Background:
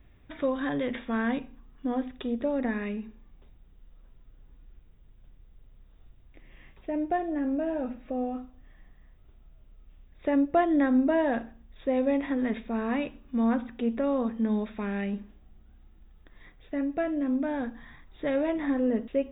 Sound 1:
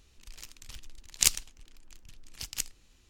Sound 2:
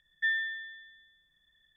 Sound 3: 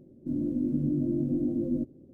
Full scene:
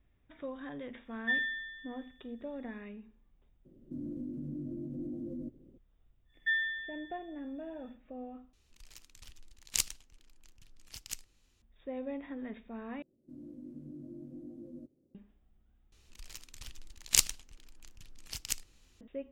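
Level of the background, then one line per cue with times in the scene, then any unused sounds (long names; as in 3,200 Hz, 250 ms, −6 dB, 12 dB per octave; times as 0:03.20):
background −13.5 dB
0:01.05: mix in 2 −2 dB
0:03.65: mix in 3 −6 dB + brickwall limiter −27.5 dBFS
0:06.24: mix in 2 −1.5 dB, fades 0.10 s
0:08.53: overwrite with 1 −7.5 dB
0:13.02: overwrite with 3 −12.5 dB + low-shelf EQ 410 Hz −9.5 dB
0:15.92: overwrite with 1 −1.5 dB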